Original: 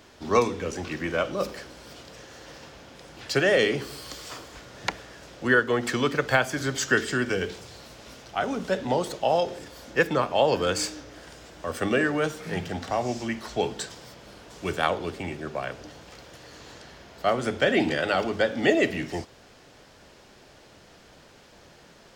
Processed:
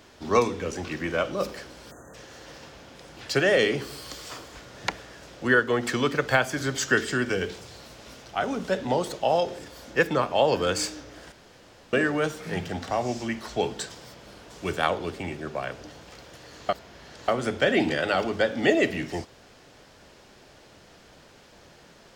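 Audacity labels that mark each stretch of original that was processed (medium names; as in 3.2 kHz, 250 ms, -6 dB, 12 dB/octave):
1.910000	2.140000	spectral selection erased 1.9–6 kHz
11.320000	11.930000	room tone
16.690000	17.280000	reverse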